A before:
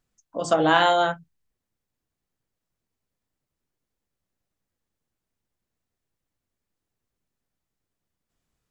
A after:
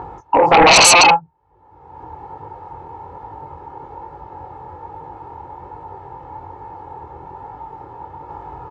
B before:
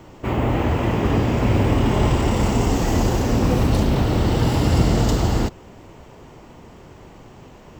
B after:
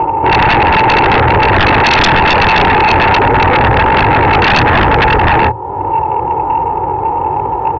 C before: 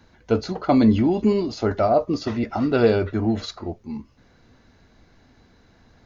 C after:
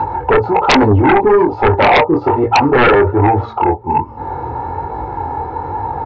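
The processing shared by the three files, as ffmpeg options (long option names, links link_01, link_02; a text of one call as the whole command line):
ffmpeg -i in.wav -af "highpass=frequency=60:width=0.5412,highpass=frequency=60:width=1.3066,aecho=1:1:2.3:0.79,bandreject=frequency=112.9:width_type=h:width=4,bandreject=frequency=225.8:width_type=h:width=4,acompressor=mode=upward:threshold=-21dB:ratio=2.5,flanger=delay=19:depth=6.6:speed=1.2,lowpass=frequency=900:width_type=q:width=9.1,aeval=exprs='0.531*sin(PI/2*2.82*val(0)/0.531)':channel_layout=same" out.wav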